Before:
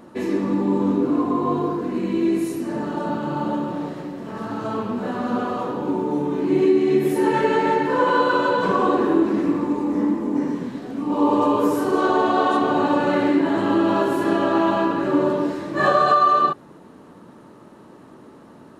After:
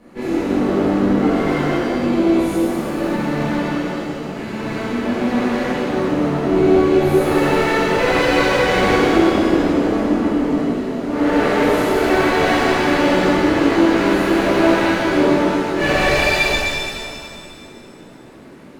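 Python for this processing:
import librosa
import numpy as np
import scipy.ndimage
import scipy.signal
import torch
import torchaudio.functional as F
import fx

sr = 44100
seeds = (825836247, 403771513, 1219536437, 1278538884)

y = fx.lower_of_two(x, sr, delay_ms=0.42)
y = fx.rev_shimmer(y, sr, seeds[0], rt60_s=2.2, semitones=7, shimmer_db=-8, drr_db=-11.0)
y = y * 10.0 ** (-6.5 / 20.0)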